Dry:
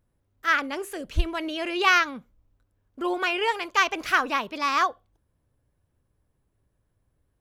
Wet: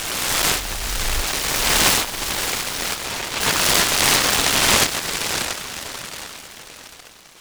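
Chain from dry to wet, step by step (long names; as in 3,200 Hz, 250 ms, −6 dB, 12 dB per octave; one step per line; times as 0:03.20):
peak hold with a rise ahead of every peak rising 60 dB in 2.76 s
parametric band 1,000 Hz +15 dB 0.62 octaves
time-frequency box erased 0:02.94–0:03.41, 950–8,300 Hz
guitar amp tone stack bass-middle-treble 10-0-10
on a send: feedback delay with all-pass diffusion 601 ms, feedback 45%, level −7 dB
on the sum: short delay modulated by noise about 1,500 Hz, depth 0.37 ms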